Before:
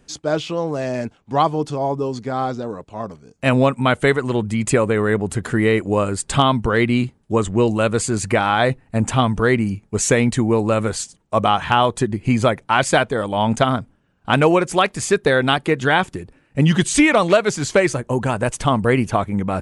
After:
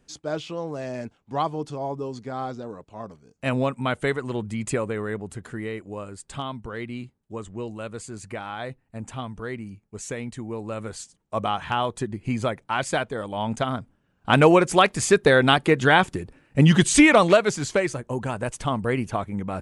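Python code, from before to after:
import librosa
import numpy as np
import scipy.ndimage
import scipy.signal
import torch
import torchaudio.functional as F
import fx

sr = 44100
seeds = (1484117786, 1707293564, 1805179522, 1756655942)

y = fx.gain(x, sr, db=fx.line((4.66, -8.5), (5.85, -16.5), (10.39, -16.5), (11.35, -9.0), (13.66, -9.0), (14.44, -0.5), (17.2, -0.5), (17.88, -8.0)))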